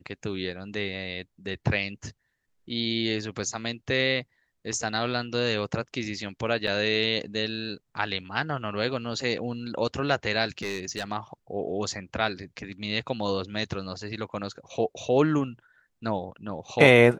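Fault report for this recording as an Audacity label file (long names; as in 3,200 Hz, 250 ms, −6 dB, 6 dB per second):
6.670000	6.670000	drop-out 4.2 ms
10.590000	11.050000	clipping −25 dBFS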